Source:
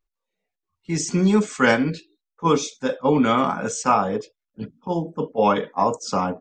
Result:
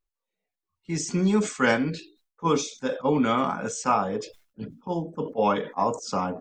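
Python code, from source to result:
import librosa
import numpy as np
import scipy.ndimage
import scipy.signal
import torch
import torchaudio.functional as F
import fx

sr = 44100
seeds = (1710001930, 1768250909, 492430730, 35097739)

y = fx.sustainer(x, sr, db_per_s=140.0)
y = F.gain(torch.from_numpy(y), -4.5).numpy()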